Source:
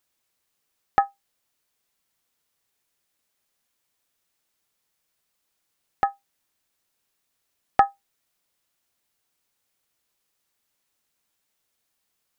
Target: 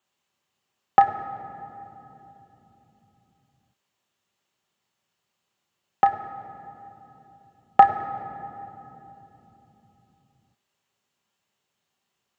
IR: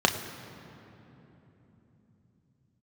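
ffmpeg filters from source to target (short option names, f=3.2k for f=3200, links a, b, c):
-filter_complex "[1:a]atrim=start_sample=2205[a];[0:a][a]afir=irnorm=-1:irlink=0,volume=-12.5dB"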